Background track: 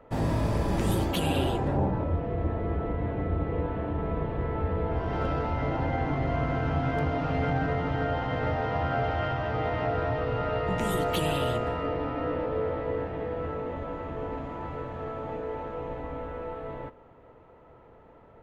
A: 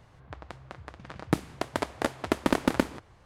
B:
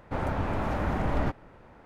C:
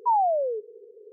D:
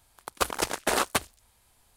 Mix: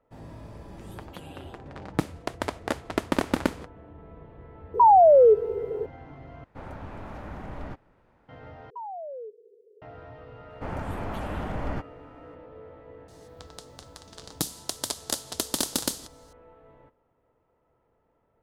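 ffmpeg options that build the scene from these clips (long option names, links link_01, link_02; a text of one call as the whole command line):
ffmpeg -i bed.wav -i cue0.wav -i cue1.wav -i cue2.wav -filter_complex "[1:a]asplit=2[link_01][link_02];[3:a]asplit=2[link_03][link_04];[2:a]asplit=2[link_05][link_06];[0:a]volume=-17dB[link_07];[link_01]agate=range=-33dB:threshold=-43dB:ratio=3:release=100:detection=peak[link_08];[link_03]alimiter=level_in=27.5dB:limit=-1dB:release=50:level=0:latency=1[link_09];[link_04]acompressor=threshold=-27dB:ratio=6:attack=3.2:release=140:knee=1:detection=peak[link_10];[link_06]bandreject=frequency=3800:width=13[link_11];[link_02]aexciter=amount=9.1:drive=6.8:freq=3400[link_12];[link_07]asplit=3[link_13][link_14][link_15];[link_13]atrim=end=6.444[link_16];[link_05]atrim=end=1.85,asetpts=PTS-STARTPTS,volume=-10.5dB[link_17];[link_14]atrim=start=8.286:end=8.704[link_18];[link_10]atrim=end=1.12,asetpts=PTS-STARTPTS,volume=-8.5dB[link_19];[link_15]atrim=start=9.816[link_20];[link_08]atrim=end=3.25,asetpts=PTS-STARTPTS,volume=-0.5dB,afade=type=in:duration=0.004:curve=hsin,afade=type=out:start_time=3.246:duration=0.004:curve=hsin,adelay=660[link_21];[link_09]atrim=end=1.12,asetpts=PTS-STARTPTS,volume=-10dB,afade=type=in:duration=0.004:curve=hsin,afade=type=out:start_time=1.116:duration=0.004:curve=hsin,adelay=4740[link_22];[link_11]atrim=end=1.85,asetpts=PTS-STARTPTS,volume=-4dB,afade=type=in:duration=0.004:curve=hsin,afade=type=out:start_time=1.846:duration=0.004:curve=hsin,adelay=463050S[link_23];[link_12]atrim=end=3.25,asetpts=PTS-STARTPTS,volume=-8dB,afade=type=in:duration=0.004:curve=hsin,afade=type=out:start_time=3.246:duration=0.004:curve=hsin,adelay=13080[link_24];[link_16][link_17]acrossfade=duration=0.004:curve1=hsin:curve2=hsin[link_25];[link_25][link_18]acrossfade=duration=0.004:curve1=hsin:curve2=hsin[link_26];[link_26][link_19]acrossfade=duration=0.004:curve1=hsin:curve2=hsin[link_27];[link_27][link_20]acrossfade=duration=0.004:curve1=hsin:curve2=hsin[link_28];[link_28][link_21][link_22][link_23][link_24]amix=inputs=5:normalize=0" out.wav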